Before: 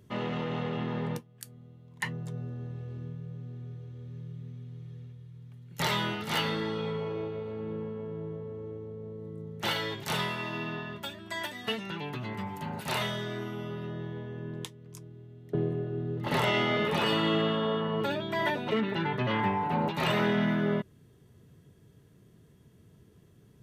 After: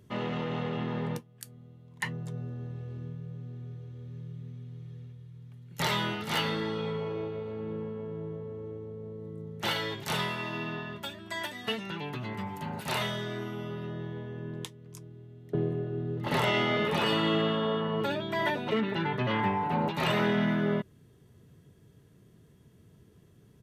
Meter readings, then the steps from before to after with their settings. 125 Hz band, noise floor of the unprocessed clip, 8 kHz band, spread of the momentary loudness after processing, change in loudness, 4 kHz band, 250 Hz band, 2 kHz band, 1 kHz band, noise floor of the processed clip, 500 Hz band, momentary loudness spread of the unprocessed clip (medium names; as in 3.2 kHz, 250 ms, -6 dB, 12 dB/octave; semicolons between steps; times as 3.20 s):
0.0 dB, -59 dBFS, 0.0 dB, 17 LU, 0.0 dB, 0.0 dB, 0.0 dB, 0.0 dB, 0.0 dB, -59 dBFS, 0.0 dB, 17 LU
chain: resampled via 32 kHz